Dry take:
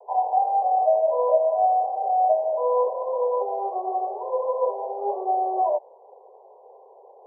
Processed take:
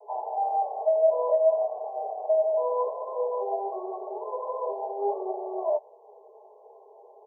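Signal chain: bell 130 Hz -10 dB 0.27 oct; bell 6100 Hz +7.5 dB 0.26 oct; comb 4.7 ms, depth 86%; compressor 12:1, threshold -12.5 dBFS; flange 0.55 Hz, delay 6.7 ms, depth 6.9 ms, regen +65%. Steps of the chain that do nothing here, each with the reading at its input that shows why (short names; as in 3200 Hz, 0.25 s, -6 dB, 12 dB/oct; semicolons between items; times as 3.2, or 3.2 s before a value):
bell 130 Hz: input band starts at 360 Hz; bell 6100 Hz: input band ends at 1100 Hz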